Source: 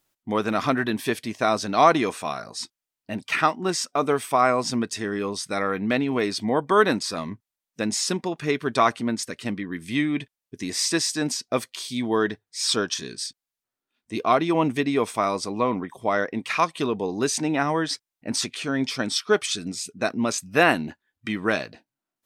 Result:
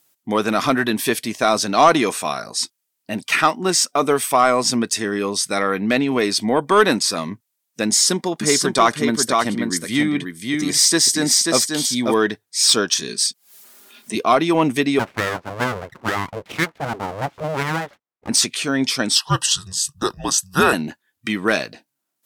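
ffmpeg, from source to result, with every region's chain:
-filter_complex "[0:a]asettb=1/sr,asplit=3[a][b][c];[a]atrim=end=7.874[d];[b]atrim=start=7.87:end=12.14,asetpts=PTS-STARTPTS,afade=t=in:d=0.004:c=qsin,afade=t=out:st=4.266:d=0.004:c=qsin,bandreject=f=2.6k:w=6.9,aecho=1:1:537:0.631,atrim=end_sample=188307[e];[c]atrim=start=12.136[f];[d][e]acrossfade=d=0.004:c1=hsin:c2=qsin[g];[g][f]acrossfade=d=0.004:c1=qsin:c2=hsin,asettb=1/sr,asplit=3[h][i][j];[h]atrim=end=13.084[k];[i]atrim=start=13.08:end=14.15,asetpts=PTS-STARTPTS,afade=t=in:d=0.004:c=qsin,afade=t=out:st=1.066:d=0.004:c=qsin,highpass=150,aecho=1:1:4.9:0.8,atrim=end_sample=47187,acompressor=mode=upward:threshold=-35dB:ratio=2.5:attack=3.2:release=140:knee=2.83:detection=peak[l];[j]atrim=start=14.146[m];[k][l]acrossfade=d=0.004:c1=hsin:c2=qsin[n];[n][m]acrossfade=d=0.004:c1=qsin:c2=hsin,asettb=1/sr,asplit=3[o][p][q];[o]atrim=end=14.994[r];[p]atrim=start=14.99:end=18.29,asetpts=PTS-STARTPTS,afade=t=in:d=0.004:c=qsin,afade=t=out:st=3.296:d=0.004:c=qsin,lowpass=f=1.3k:w=0.5412,lowpass=f=1.3k:w=1.3066,aeval=exprs='abs(val(0))':c=same[s];[q]atrim=start=18.286[t];[r][s]acrossfade=d=0.004:c1=hsin:c2=qsin[u];[u][t]acrossfade=d=0.004:c1=qsin:c2=hsin,asettb=1/sr,asplit=3[v][w][x];[v]atrim=end=19.154[y];[w]atrim=start=19.15:end=20.73,asetpts=PTS-STARTPTS,afade=t=in:d=0.004:c=qsin,afade=t=out:st=1.576:d=0.004:c=qsin,equalizer=f=250:t=o:w=1.9:g=-6,afreqshift=-280,asuperstop=centerf=2200:order=20:qfactor=3.9[z];[x]atrim=start=20.726[aa];[y][z]acrossfade=d=0.004:c1=hsin:c2=qsin[ab];[ab][aa]acrossfade=d=0.004:c1=qsin:c2=hsin,highpass=120,aemphasis=mode=production:type=cd,acontrast=66,volume=-1dB"

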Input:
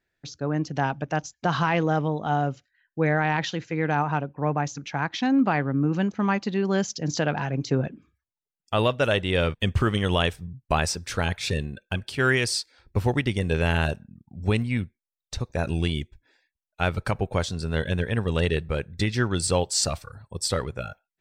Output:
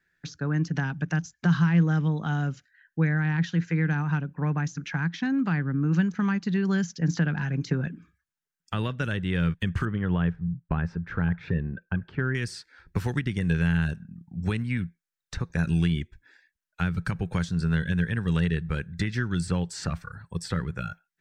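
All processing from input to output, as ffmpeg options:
-filter_complex "[0:a]asettb=1/sr,asplit=3[a][b][c];[a]atrim=end=9.854[d];[b]atrim=start=9.85:end=12.35,asetpts=PTS-STARTPTS,afade=t=in:d=0.004:c=qsin,afade=t=out:st=2.496:d=0.004:c=qsin,lowpass=1.2k,aemphasis=mode=reproduction:type=50fm[e];[c]atrim=start=12.346[f];[d][e]acrossfade=d=0.004:c1=hsin:c2=qsin[g];[g][f]acrossfade=d=0.004:c1=qsin:c2=hsin,equalizer=f=630:t=o:w=0.67:g=-7,equalizer=f=1.6k:t=o:w=0.67:g=11,equalizer=f=6.3k:t=o:w=0.67:g=3,acrossover=split=310|2700[h][i][j];[h]acompressor=threshold=-26dB:ratio=4[k];[i]acompressor=threshold=-35dB:ratio=4[l];[j]acompressor=threshold=-44dB:ratio=4[m];[k][l][m]amix=inputs=3:normalize=0,equalizer=f=170:w=5.6:g=11.5"

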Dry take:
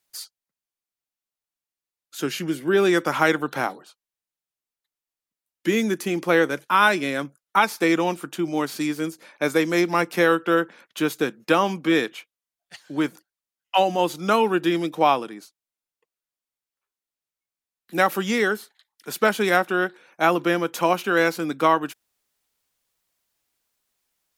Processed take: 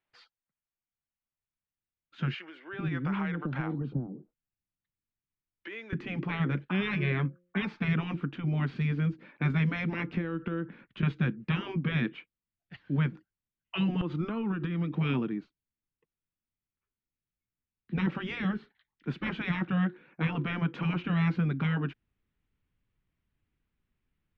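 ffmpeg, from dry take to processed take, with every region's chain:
-filter_complex "[0:a]asettb=1/sr,asplit=3[a][b][c];[a]atrim=end=2.344[d];[b]atrim=start=2.34:end=5.93,asetpts=PTS-STARTPTS,afade=t=in:d=0.004:c=qsin,afade=t=out:st=3.586:d=0.004:c=qsin,acompressor=threshold=-25dB:ratio=5:attack=3.2:release=140:knee=1:detection=peak,acrossover=split=540[e][f];[e]adelay=390[g];[g][f]amix=inputs=2:normalize=0,atrim=end_sample=158319[h];[c]atrim=start=5.926[i];[d][h]acrossfade=d=0.004:c1=hsin:c2=qsin[j];[j][i]acrossfade=d=0.004:c1=qsin:c2=hsin,asettb=1/sr,asplit=3[k][l][m];[k]atrim=end=6.934[n];[l]atrim=start=6.93:end=7.57,asetpts=PTS-STARTPTS,afade=t=in:d=0.004:c=qsin,afade=t=out:st=0.636:d=0.004:c=qsin,equalizer=f=1.4k:w=1.2:g=9,bandreject=f=1.4k:w=7.5,bandreject=f=176.8:t=h:w=4,bandreject=f=353.6:t=h:w=4,bandreject=f=530.4:t=h:w=4[o];[m]atrim=start=7.566[p];[n][o]acrossfade=d=0.004:c1=hsin:c2=qsin[q];[q][p]acrossfade=d=0.004:c1=qsin:c2=hsin,asettb=1/sr,asplit=3[r][s][t];[r]atrim=end=10.084[u];[s]atrim=start=10.08:end=11.03,asetpts=PTS-STARTPTS,afade=t=in:d=0.004:c=qsin,afade=t=out:st=0.946:d=0.004:c=qsin,lowshelf=f=80:g=11.5,acompressor=threshold=-30dB:ratio=5:attack=3.2:release=140:knee=1:detection=peak[v];[t]atrim=start=11.026[w];[u][v]acrossfade=d=0.004:c1=hsin:c2=qsin[x];[x][w]acrossfade=d=0.004:c1=qsin:c2=hsin,asettb=1/sr,asplit=3[y][z][aa];[y]atrim=end=14.014[ab];[z]atrim=start=14.01:end=14.91,asetpts=PTS-STARTPTS,afade=t=in:d=0.004:c=qsin,afade=t=out:st=0.896:d=0.004:c=qsin,acompressor=threshold=-27dB:ratio=12:attack=3.2:release=140:knee=1:detection=peak,equalizer=f=1.2k:w=3.2:g=10.5[ac];[aa]atrim=start=14.906[ad];[ab][ac]acrossfade=d=0.004:c1=hsin:c2=qsin[ae];[ae][ad]acrossfade=d=0.004:c1=qsin:c2=hsin,lowpass=f=2.8k:w=0.5412,lowpass=f=2.8k:w=1.3066,afftfilt=real='re*lt(hypot(re,im),0.251)':imag='im*lt(hypot(re,im),0.251)':win_size=1024:overlap=0.75,asubboost=boost=10.5:cutoff=200,volume=-4.5dB"

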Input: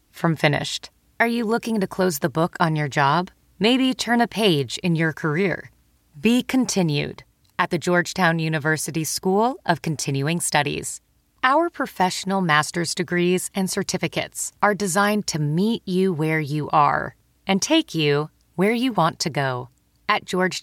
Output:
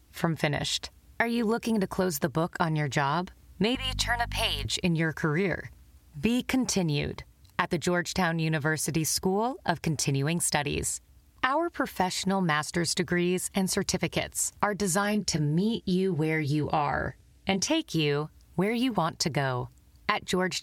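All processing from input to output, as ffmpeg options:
-filter_complex "[0:a]asettb=1/sr,asplit=3[a][b][c];[a]atrim=end=3.754[d];[b]atrim=start=3.75:end=4.65,asetpts=PTS-STARTPTS,afade=t=in:d=0.004:c=qsin,afade=t=out:st=0.896:d=0.004:c=qsin,highpass=f=730:w=0.5412,highpass=f=730:w=1.3066,aeval=exprs='val(0)+0.0178*(sin(2*PI*50*n/s)+sin(2*PI*2*50*n/s)/2+sin(2*PI*3*50*n/s)/3+sin(2*PI*4*50*n/s)/4+sin(2*PI*5*50*n/s)/5)':c=same[e];[c]atrim=start=4.646[f];[d][e]acrossfade=d=0.004:c1=hsin:c2=qsin[g];[g][f]acrossfade=d=0.004:c1=qsin:c2=hsin,asettb=1/sr,asplit=3[h][i][j];[h]atrim=end=15.034[k];[i]atrim=start=15.03:end=17.68,asetpts=PTS-STARTPTS,afade=t=in:d=0.004:c=qsin,afade=t=out:st=2.646:d=0.004:c=qsin,lowpass=11k,equalizer=f=1.1k:t=o:w=0.48:g=-9,asplit=2[l][m];[m]adelay=23,volume=-10dB[n];[l][n]amix=inputs=2:normalize=0,atrim=end_sample=116865[o];[j]atrim=start=17.676[p];[k][o]acrossfade=d=0.004:c1=hsin:c2=qsin[q];[q][p]acrossfade=d=0.004:c1=qsin:c2=hsin,equalizer=f=73:t=o:w=0.71:g=12,acompressor=threshold=-23dB:ratio=6"

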